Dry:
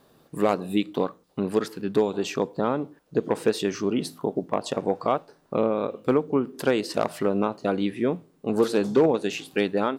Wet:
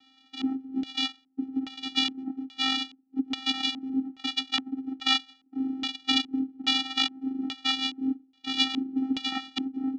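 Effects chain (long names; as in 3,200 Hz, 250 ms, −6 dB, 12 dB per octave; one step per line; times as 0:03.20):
samples in bit-reversed order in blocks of 256 samples
channel vocoder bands 4, square 264 Hz
auto-filter low-pass square 1.2 Hz 350–3,500 Hz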